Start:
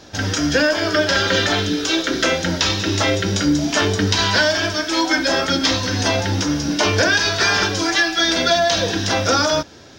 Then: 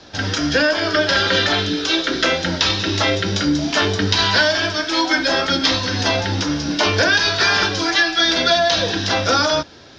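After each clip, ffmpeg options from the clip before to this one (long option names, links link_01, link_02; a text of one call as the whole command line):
ffmpeg -i in.wav -filter_complex "[0:a]acrossover=split=130|1500|1900[link_01][link_02][link_03][link_04];[link_02]crystalizer=i=6:c=0[link_05];[link_01][link_05][link_03][link_04]amix=inputs=4:normalize=0,lowpass=frequency=4500:width_type=q:width=1.5,volume=-1.5dB" out.wav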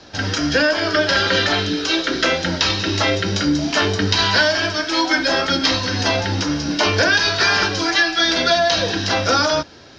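ffmpeg -i in.wav -af "bandreject=frequency=3500:width=16" out.wav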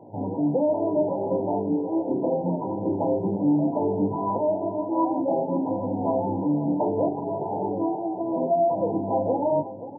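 ffmpeg -i in.wav -filter_complex "[0:a]asoftclip=type=tanh:threshold=-14.5dB,asplit=2[link_01][link_02];[link_02]adelay=530.6,volume=-13dB,highshelf=frequency=4000:gain=-11.9[link_03];[link_01][link_03]amix=inputs=2:normalize=0,afftfilt=real='re*between(b*sr/4096,100,1000)':imag='im*between(b*sr/4096,100,1000)':win_size=4096:overlap=0.75" out.wav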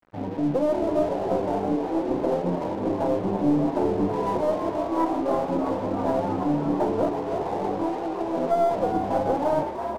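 ffmpeg -i in.wav -filter_complex "[0:a]aeval=exprs='0.224*(cos(1*acos(clip(val(0)/0.224,-1,1)))-cos(1*PI/2))+0.0316*(cos(2*acos(clip(val(0)/0.224,-1,1)))-cos(2*PI/2))':channel_layout=same,aeval=exprs='sgn(val(0))*max(abs(val(0))-0.00891,0)':channel_layout=same,asplit=2[link_01][link_02];[link_02]asplit=8[link_03][link_04][link_05][link_06][link_07][link_08][link_09][link_10];[link_03]adelay=329,afreqshift=69,volume=-8dB[link_11];[link_04]adelay=658,afreqshift=138,volume=-12dB[link_12];[link_05]adelay=987,afreqshift=207,volume=-16dB[link_13];[link_06]adelay=1316,afreqshift=276,volume=-20dB[link_14];[link_07]adelay=1645,afreqshift=345,volume=-24.1dB[link_15];[link_08]adelay=1974,afreqshift=414,volume=-28.1dB[link_16];[link_09]adelay=2303,afreqshift=483,volume=-32.1dB[link_17];[link_10]adelay=2632,afreqshift=552,volume=-36.1dB[link_18];[link_11][link_12][link_13][link_14][link_15][link_16][link_17][link_18]amix=inputs=8:normalize=0[link_19];[link_01][link_19]amix=inputs=2:normalize=0" out.wav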